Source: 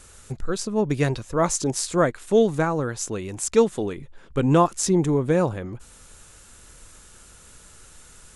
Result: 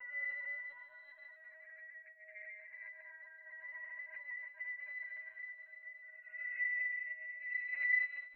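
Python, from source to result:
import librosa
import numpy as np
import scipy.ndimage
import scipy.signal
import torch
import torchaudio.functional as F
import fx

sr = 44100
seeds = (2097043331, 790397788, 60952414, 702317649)

y = fx.band_shuffle(x, sr, order='2143')
y = fx.env_lowpass(y, sr, base_hz=870.0, full_db=-14.0)
y = fx.paulstretch(y, sr, seeds[0], factor=8.0, window_s=0.25, from_s=0.51)
y = fx.over_compress(y, sr, threshold_db=-24.0, ratio=-0.5)
y = fx.filter_sweep_highpass(y, sr, from_hz=740.0, to_hz=1900.0, start_s=0.38, end_s=2.39, q=2.0)
y = scipy.signal.sosfilt(scipy.signal.cheby1(3, 1.0, [510.0, 3000.0], 'bandpass', fs=sr, output='sos'), y)
y = fx.octave_resonator(y, sr, note='B', decay_s=0.64)
y = y + 10.0 ** (-74.0 / 20.0) * np.sin(2.0 * np.pi * 630.0 * np.arange(len(y)) / sr)
y = y + 10.0 ** (-9.0 / 20.0) * np.pad(y, (int(143 * sr / 1000.0), 0))[:len(y)]
y = fx.rev_fdn(y, sr, rt60_s=0.6, lf_ratio=1.0, hf_ratio=0.55, size_ms=40.0, drr_db=15.0)
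y = fx.lpc_vocoder(y, sr, seeds[1], excitation='pitch_kept', order=16)
y = y * 10.0 ** (4.0 / 20.0)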